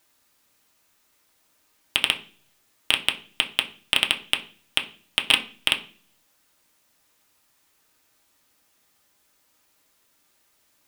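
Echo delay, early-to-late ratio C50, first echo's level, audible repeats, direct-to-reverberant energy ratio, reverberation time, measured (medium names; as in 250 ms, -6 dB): no echo, 14.0 dB, no echo, no echo, 2.0 dB, 0.40 s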